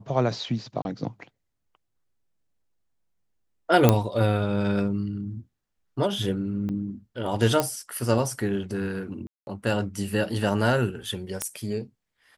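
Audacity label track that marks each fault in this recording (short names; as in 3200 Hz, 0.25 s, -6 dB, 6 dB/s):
0.820000	0.850000	gap 31 ms
3.890000	3.890000	pop -3 dBFS
6.690000	6.700000	gap 5.8 ms
7.600000	7.600000	pop -8 dBFS
9.270000	9.470000	gap 0.201 s
11.420000	11.420000	pop -11 dBFS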